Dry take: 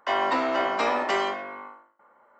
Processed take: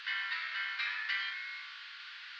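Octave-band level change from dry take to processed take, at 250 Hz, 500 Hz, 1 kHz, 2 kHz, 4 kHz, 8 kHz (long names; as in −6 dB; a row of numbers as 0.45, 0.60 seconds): below −40 dB, below −40 dB, −21.5 dB, −3.0 dB, −3.0 dB, below −15 dB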